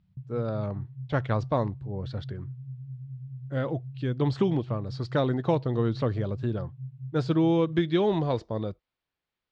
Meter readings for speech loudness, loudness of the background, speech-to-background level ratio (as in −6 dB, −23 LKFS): −28.5 LKFS, −41.0 LKFS, 12.5 dB